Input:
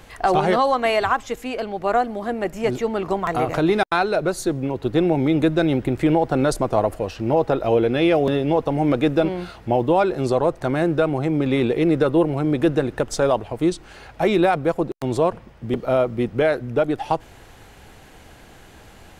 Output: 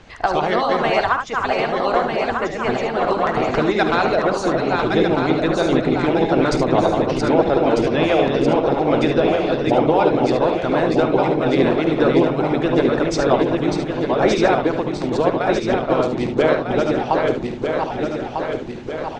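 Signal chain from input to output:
feedback delay that plays each chunk backwards 624 ms, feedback 73%, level −3.5 dB
low-pass filter 6,200 Hz 24 dB per octave
ambience of single reflections 51 ms −10.5 dB, 73 ms −7 dB
harmonic and percussive parts rebalanced harmonic −12 dB
level +4.5 dB

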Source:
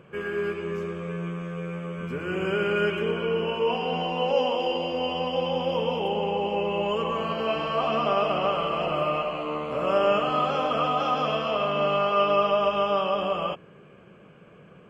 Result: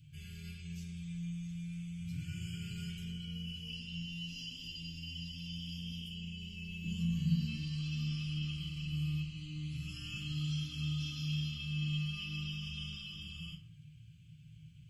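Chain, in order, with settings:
Chebyshev band-stop filter 120–3,800 Hz, order 3
0:06.84–0:07.53: parametric band 170 Hz +12.5 dB 1.6 octaves
feedback delay network reverb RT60 0.54 s, low-frequency decay 1×, high-frequency decay 0.5×, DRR −4 dB
dynamic equaliser 2,600 Hz, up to −5 dB, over −52 dBFS, Q 1.2

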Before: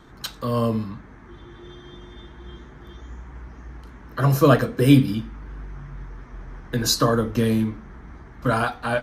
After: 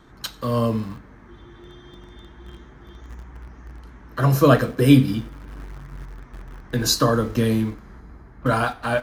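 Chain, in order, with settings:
in parallel at −8.5 dB: centre clipping without the shift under −31.5 dBFS
0:08.00–0:08.46: on the sum: high-frequency loss of the air 490 metres
coupled-rooms reverb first 0.51 s, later 3.1 s, from −22 dB, DRR 16 dB
level −2 dB

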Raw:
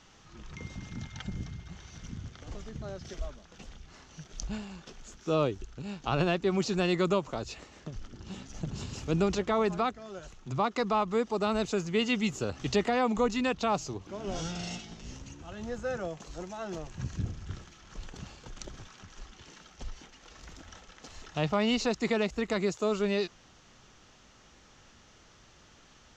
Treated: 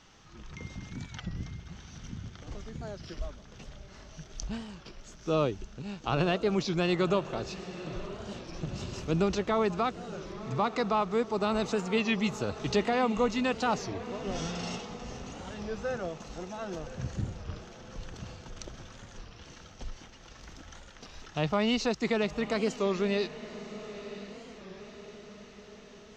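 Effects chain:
notch filter 7,100 Hz, Q 10
on a send: feedback delay with all-pass diffusion 979 ms, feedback 57%, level −13.5 dB
on the sum: wow of a warped record 33 1/3 rpm, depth 160 cents

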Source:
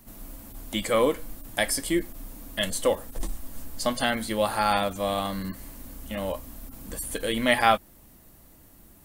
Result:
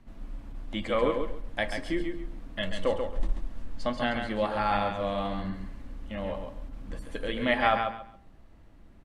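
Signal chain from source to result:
low-pass filter 2,900 Hz 12 dB per octave
low-shelf EQ 63 Hz +8.5 dB
hum removal 56.67 Hz, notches 27
on a send: repeating echo 136 ms, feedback 22%, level −6 dB
on the sum: level −3.5 dB

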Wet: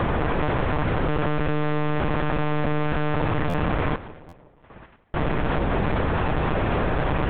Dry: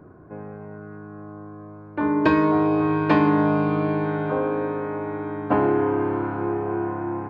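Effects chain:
compressor on every frequency bin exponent 0.2
0:03.95–0:05.15: noise gate −7 dBFS, range −45 dB
automatic gain control gain up to 16 dB
fuzz pedal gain 38 dB, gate −43 dBFS
high-frequency loss of the air 380 metres
on a send: echo with a time of its own for lows and highs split 920 Hz, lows 176 ms, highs 119 ms, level −15.5 dB
on the sum: one-pitch LPC vocoder at 8 kHz 150 Hz
buffer that repeats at 0:03.49/0:04.28, samples 512, times 3
level −7.5 dB

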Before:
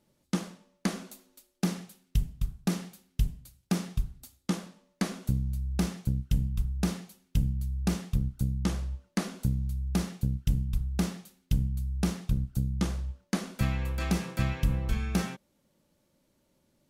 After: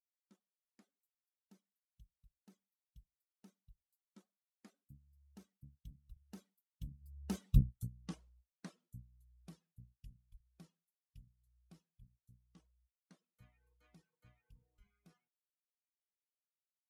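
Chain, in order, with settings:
spectral dynamics exaggerated over time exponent 1.5
source passing by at 0:07.60, 25 m/s, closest 1.5 metres
reverb reduction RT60 0.94 s
level +4.5 dB

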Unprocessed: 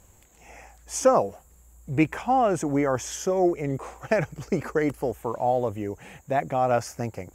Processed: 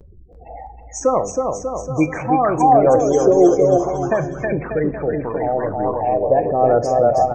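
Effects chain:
mu-law and A-law mismatch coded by mu
RIAA equalisation playback
gate on every frequency bin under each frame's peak −25 dB strong
noise gate with hold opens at −33 dBFS
bass and treble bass −10 dB, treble +13 dB
bouncing-ball delay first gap 320 ms, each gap 0.85×, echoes 5
on a send at −11 dB: convolution reverb RT60 0.60 s, pre-delay 6 ms
on the sum: auto-filter bell 0.3 Hz 430–3,300 Hz +13 dB

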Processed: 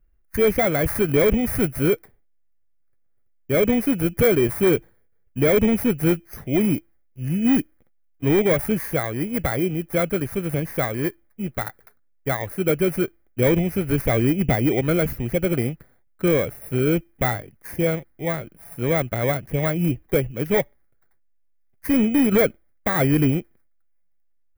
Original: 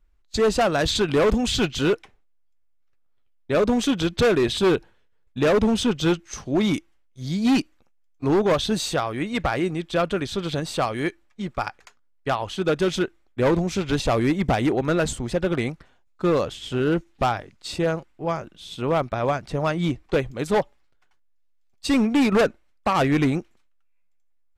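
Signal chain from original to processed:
samples in bit-reversed order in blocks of 16 samples
octave-band graphic EQ 125/500/1,000/2,000/4,000/8,000 Hz +5/+3/−7/+9/−12/−10 dB

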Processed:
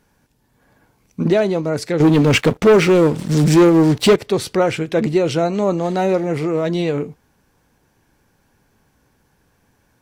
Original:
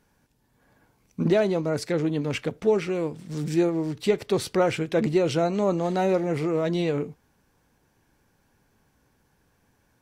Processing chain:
0:02.00–0:04.16: leveller curve on the samples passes 3
level +5.5 dB

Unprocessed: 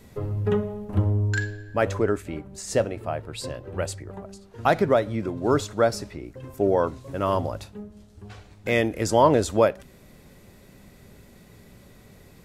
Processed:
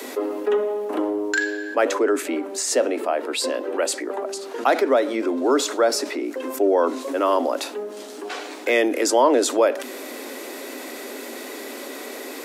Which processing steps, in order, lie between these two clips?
Butterworth high-pass 250 Hz 96 dB per octave
envelope flattener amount 50%

